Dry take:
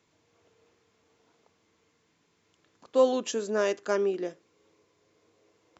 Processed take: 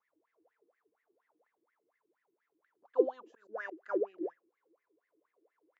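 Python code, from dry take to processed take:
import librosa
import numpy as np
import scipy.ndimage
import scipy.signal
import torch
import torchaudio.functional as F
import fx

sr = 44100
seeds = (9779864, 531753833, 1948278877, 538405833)

y = fx.wah_lfo(x, sr, hz=4.2, low_hz=310.0, high_hz=2000.0, q=18.0)
y = fx.auto_swell(y, sr, attack_ms=166.0, at=(3.26, 3.81))
y = F.gain(torch.from_numpy(y), 5.5).numpy()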